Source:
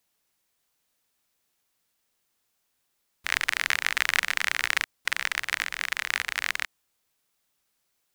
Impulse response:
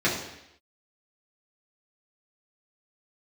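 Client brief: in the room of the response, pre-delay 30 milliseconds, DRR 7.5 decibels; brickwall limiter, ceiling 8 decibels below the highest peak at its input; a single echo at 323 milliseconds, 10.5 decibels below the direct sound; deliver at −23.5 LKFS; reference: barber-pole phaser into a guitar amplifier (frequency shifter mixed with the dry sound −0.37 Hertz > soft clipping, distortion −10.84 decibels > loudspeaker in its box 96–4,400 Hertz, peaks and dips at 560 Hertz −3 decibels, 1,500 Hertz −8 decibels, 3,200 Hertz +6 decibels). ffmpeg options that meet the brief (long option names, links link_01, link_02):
-filter_complex "[0:a]alimiter=limit=-9.5dB:level=0:latency=1,aecho=1:1:323:0.299,asplit=2[link_01][link_02];[1:a]atrim=start_sample=2205,adelay=30[link_03];[link_02][link_03]afir=irnorm=-1:irlink=0,volume=-22.5dB[link_04];[link_01][link_04]amix=inputs=2:normalize=0,asplit=2[link_05][link_06];[link_06]afreqshift=-0.37[link_07];[link_05][link_07]amix=inputs=2:normalize=1,asoftclip=threshold=-22dB,highpass=96,equalizer=frequency=560:width_type=q:width=4:gain=-3,equalizer=frequency=1500:width_type=q:width=4:gain=-8,equalizer=frequency=3200:width_type=q:width=4:gain=6,lowpass=frequency=4400:width=0.5412,lowpass=frequency=4400:width=1.3066,volume=13.5dB"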